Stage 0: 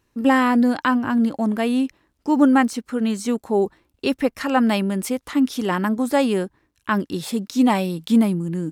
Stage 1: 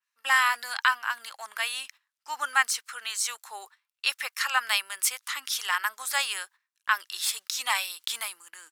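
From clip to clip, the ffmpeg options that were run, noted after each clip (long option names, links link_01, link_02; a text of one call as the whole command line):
ffmpeg -i in.wav -af "highpass=frequency=1200:width=0.5412,highpass=frequency=1200:width=1.3066,agate=range=-13dB:threshold=-53dB:ratio=16:detection=peak,adynamicequalizer=threshold=0.00891:dfrequency=3500:dqfactor=0.7:tfrequency=3500:tqfactor=0.7:attack=5:release=100:ratio=0.375:range=2.5:mode=boostabove:tftype=highshelf,volume=2dB" out.wav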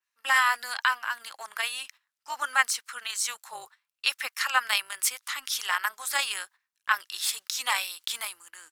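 ffmpeg -i in.wav -af "tremolo=f=250:d=0.519,volume=2dB" out.wav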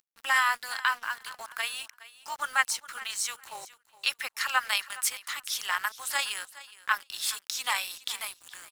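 ffmpeg -i in.wav -af "acompressor=mode=upward:threshold=-36dB:ratio=2.5,acrusher=bits=6:mix=0:aa=0.5,aecho=1:1:416|832:0.126|0.0227,volume=-2dB" out.wav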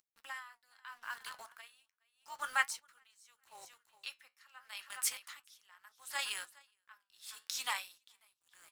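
ffmpeg -i in.wav -af "flanger=delay=5.6:depth=8.4:regen=-69:speed=0.35:shape=triangular,aeval=exprs='val(0)*pow(10,-28*(0.5-0.5*cos(2*PI*0.79*n/s))/20)':channel_layout=same,volume=-1dB" out.wav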